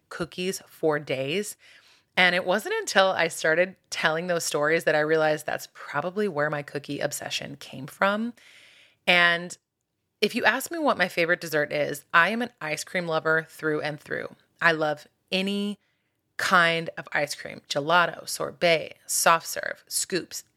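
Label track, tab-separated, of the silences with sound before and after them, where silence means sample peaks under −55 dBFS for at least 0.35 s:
9.570000	10.220000	silence
15.750000	16.390000	silence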